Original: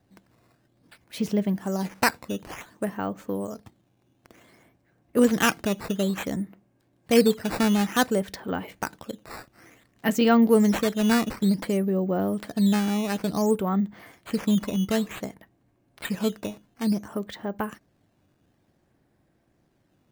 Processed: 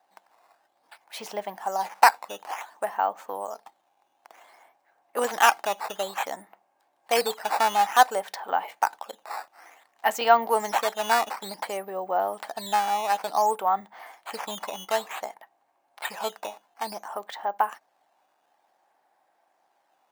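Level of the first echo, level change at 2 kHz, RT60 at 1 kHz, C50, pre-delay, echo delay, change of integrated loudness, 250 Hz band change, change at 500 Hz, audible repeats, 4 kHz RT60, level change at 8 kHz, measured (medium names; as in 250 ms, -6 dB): no echo, +2.0 dB, no reverb, no reverb, no reverb, no echo, -1.0 dB, -21.5 dB, -2.5 dB, no echo, no reverb, 0.0 dB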